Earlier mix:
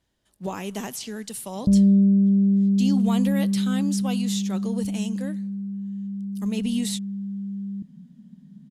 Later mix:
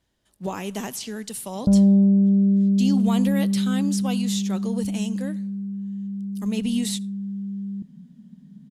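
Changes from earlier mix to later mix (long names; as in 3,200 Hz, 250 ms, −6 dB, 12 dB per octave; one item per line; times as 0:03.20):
background: remove moving average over 52 samples
reverb: on, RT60 0.40 s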